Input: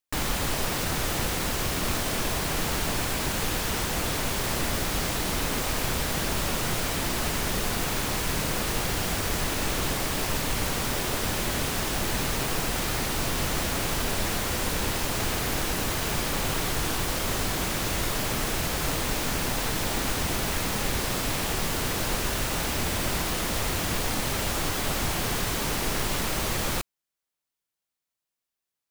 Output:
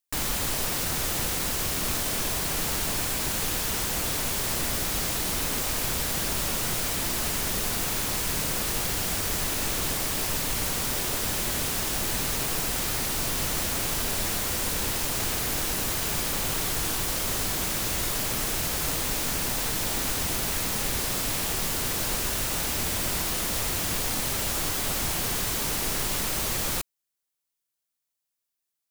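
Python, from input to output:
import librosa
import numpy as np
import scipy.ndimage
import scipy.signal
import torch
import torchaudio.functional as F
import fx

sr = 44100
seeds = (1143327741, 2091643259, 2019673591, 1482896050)

y = fx.high_shelf(x, sr, hz=4600.0, db=8.5)
y = y * 10.0 ** (-3.5 / 20.0)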